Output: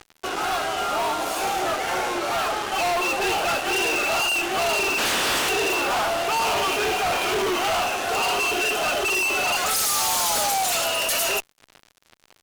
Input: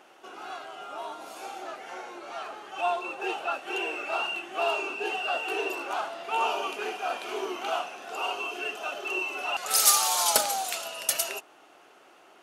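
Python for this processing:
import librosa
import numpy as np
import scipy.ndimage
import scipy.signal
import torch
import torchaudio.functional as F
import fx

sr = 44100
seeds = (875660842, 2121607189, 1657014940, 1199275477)

y = fx.spec_clip(x, sr, under_db=28, at=(4.97, 5.48), fade=0.02)
y = fx.fuzz(y, sr, gain_db=44.0, gate_db=-48.0)
y = F.gain(torch.from_numpy(y), -8.0).numpy()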